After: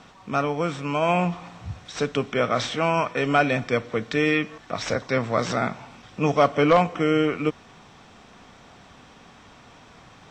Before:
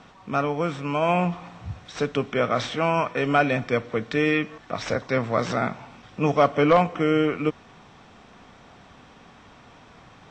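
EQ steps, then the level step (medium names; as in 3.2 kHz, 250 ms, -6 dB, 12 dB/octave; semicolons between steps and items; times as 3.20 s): treble shelf 5.1 kHz +7.5 dB; 0.0 dB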